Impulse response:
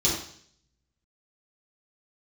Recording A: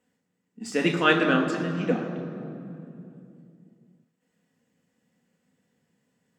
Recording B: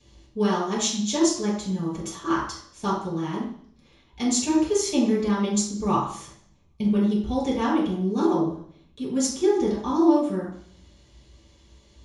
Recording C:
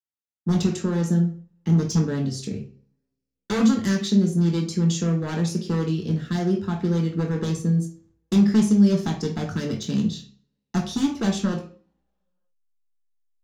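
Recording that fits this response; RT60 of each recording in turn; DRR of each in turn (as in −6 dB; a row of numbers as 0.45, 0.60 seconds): B; 2.8, 0.60, 0.45 seconds; 1.5, −7.5, 0.5 decibels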